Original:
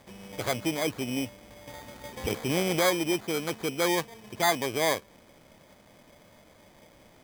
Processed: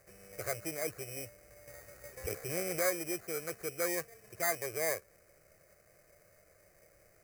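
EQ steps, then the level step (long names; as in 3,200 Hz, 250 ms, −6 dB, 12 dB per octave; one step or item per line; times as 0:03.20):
high-shelf EQ 4,800 Hz +7 dB
phaser with its sweep stopped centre 920 Hz, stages 6
−6.5 dB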